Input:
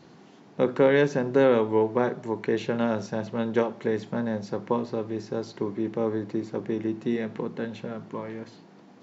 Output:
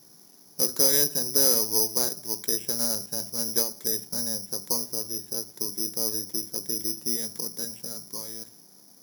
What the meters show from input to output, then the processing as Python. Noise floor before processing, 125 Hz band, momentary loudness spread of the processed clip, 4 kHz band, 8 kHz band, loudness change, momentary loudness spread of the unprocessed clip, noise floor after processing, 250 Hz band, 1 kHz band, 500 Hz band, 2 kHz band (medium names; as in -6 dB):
-52 dBFS, -10.5 dB, 15 LU, +15.0 dB, no reading, +2.0 dB, 15 LU, -54 dBFS, -10.5 dB, -10.5 dB, -10.5 dB, -10.5 dB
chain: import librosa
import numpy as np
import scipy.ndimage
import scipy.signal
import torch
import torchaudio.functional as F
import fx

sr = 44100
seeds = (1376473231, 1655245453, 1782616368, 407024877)

y = (np.kron(scipy.signal.resample_poly(x, 1, 8), np.eye(8)[0]) * 8)[:len(x)]
y = F.gain(torch.from_numpy(y), -10.5).numpy()